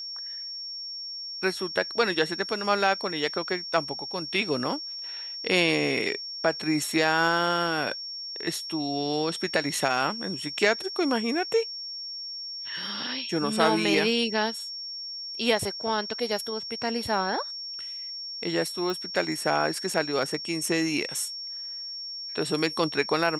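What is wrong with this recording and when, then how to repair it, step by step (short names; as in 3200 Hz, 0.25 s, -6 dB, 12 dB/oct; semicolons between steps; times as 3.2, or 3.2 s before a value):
tone 5500 Hz -34 dBFS
18.9 pop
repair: de-click; notch 5500 Hz, Q 30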